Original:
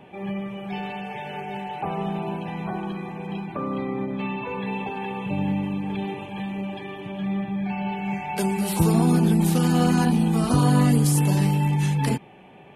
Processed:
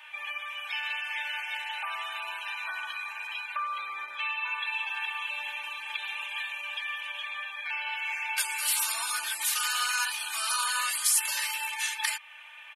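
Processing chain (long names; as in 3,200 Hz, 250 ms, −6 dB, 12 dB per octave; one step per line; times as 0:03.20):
high-pass filter 1,400 Hz 24 dB per octave
comb filter 3.3 ms, depth 99%
in parallel at +2 dB: downward compressor, threshold −40 dBFS, peak gain reduction 17 dB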